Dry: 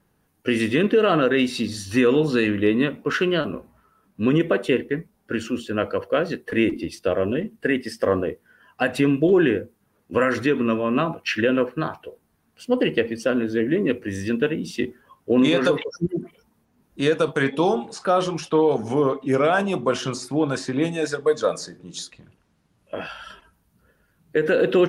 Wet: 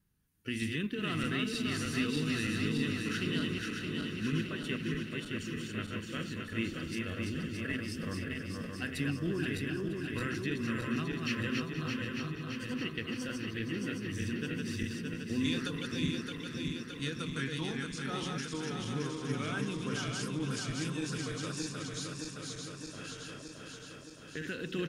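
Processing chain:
feedback delay that plays each chunk backwards 309 ms, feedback 80%, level −3 dB
guitar amp tone stack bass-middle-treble 6-0-2
on a send: repeating echo 475 ms, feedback 55%, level −14 dB
on the sum: dynamic equaliser 520 Hz, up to −5 dB, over −53 dBFS, Q 0.98
level +6 dB

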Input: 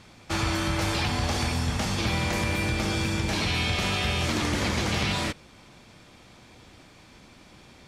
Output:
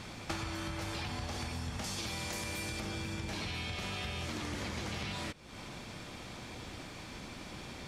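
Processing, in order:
0:01.84–0:02.80: bass and treble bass −3 dB, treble +9 dB
downward compressor 16 to 1, threshold −41 dBFS, peak gain reduction 19.5 dB
level +5.5 dB

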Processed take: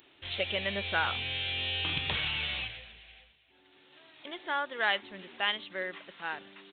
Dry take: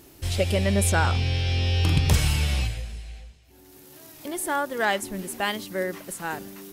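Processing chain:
downsampling to 8,000 Hz
spectral tilt +4.5 dB per octave
level −6 dB

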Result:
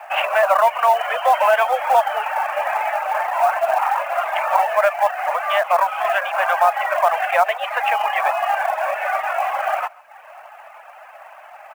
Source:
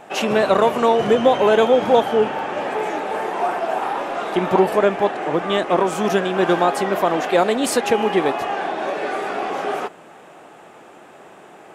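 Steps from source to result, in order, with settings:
Butterworth low-pass 2,800 Hz 48 dB per octave
reverb reduction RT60 0.79 s
Butterworth high-pass 600 Hz 72 dB per octave
in parallel at +1.5 dB: brickwall limiter −15.5 dBFS, peak gain reduction 9 dB
on the sum: log-companded quantiser 6 bits
on a send: single-tap delay 137 ms −23.5 dB

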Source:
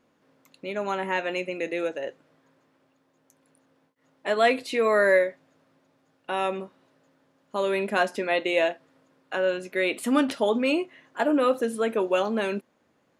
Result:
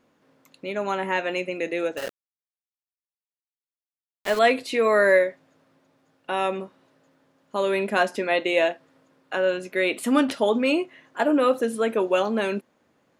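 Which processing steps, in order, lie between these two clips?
0:01.97–0:04.39: centre clipping without the shift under −31 dBFS
level +2 dB

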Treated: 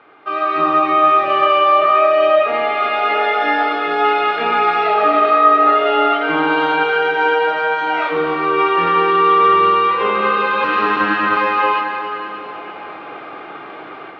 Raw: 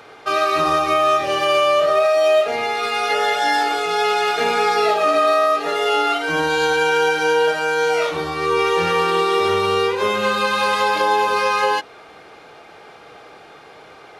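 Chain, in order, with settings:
0:10.64–0:11.37: lower of the sound and its delayed copy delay 0.73 ms
automatic gain control gain up to 13.5 dB
loudspeaker in its box 160–3,000 Hz, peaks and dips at 310 Hz +7 dB, 470 Hz −4 dB, 1,200 Hz +5 dB
convolution reverb RT60 3.8 s, pre-delay 88 ms, DRR 4 dB
level −6 dB

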